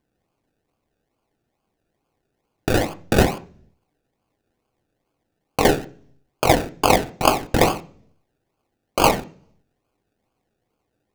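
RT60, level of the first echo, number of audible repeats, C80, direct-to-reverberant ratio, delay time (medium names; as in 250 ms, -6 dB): 0.45 s, no echo, no echo, 23.5 dB, 7.5 dB, no echo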